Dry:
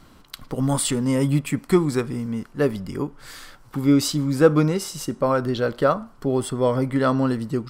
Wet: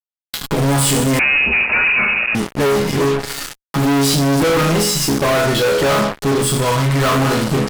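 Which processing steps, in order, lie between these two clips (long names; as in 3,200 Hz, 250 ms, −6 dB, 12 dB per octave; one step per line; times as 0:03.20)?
0:06.16–0:07.04: parametric band 1,100 Hz → 300 Hz −11 dB 1.4 octaves
resonators tuned to a chord C#3 minor, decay 0.48 s
hum removal 64.3 Hz, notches 4
fuzz pedal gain 56 dB, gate −54 dBFS
0:01.19–0:02.35: voice inversion scrambler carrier 2,700 Hz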